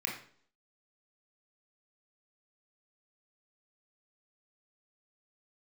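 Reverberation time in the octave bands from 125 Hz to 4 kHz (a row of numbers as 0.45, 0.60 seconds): 0.55, 0.60, 0.55, 0.50, 0.45, 0.50 seconds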